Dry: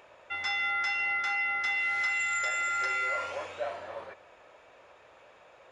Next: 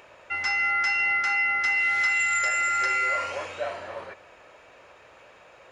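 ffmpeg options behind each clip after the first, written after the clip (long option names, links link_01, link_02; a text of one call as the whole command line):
ffmpeg -i in.wav -af "equalizer=frequency=710:width_type=o:width=1.8:gain=-4,bandreject=frequency=3500:width=14,volume=7dB" out.wav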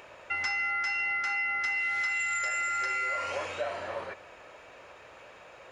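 ffmpeg -i in.wav -af "acompressor=threshold=-30dB:ratio=4,volume=1dB" out.wav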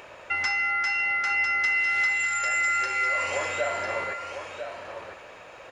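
ffmpeg -i in.wav -af "aecho=1:1:1000:0.422,volume=4.5dB" out.wav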